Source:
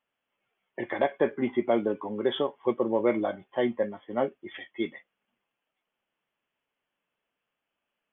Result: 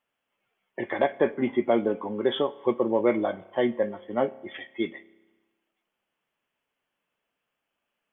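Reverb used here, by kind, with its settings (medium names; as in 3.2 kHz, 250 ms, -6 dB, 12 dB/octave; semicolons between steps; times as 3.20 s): spring tank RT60 1.2 s, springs 30 ms, chirp 50 ms, DRR 18.5 dB; trim +2 dB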